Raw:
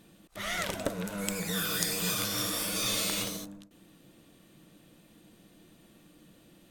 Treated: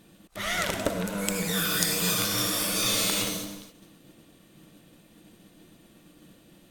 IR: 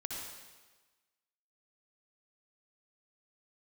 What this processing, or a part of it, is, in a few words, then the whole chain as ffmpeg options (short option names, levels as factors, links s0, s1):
keyed gated reverb: -filter_complex "[0:a]asplit=3[s0][s1][s2];[1:a]atrim=start_sample=2205[s3];[s1][s3]afir=irnorm=-1:irlink=0[s4];[s2]apad=whole_len=295749[s5];[s4][s5]sidechaingate=range=0.0224:threshold=0.00158:ratio=16:detection=peak,volume=0.596[s6];[s0][s6]amix=inputs=2:normalize=0,volume=1.19"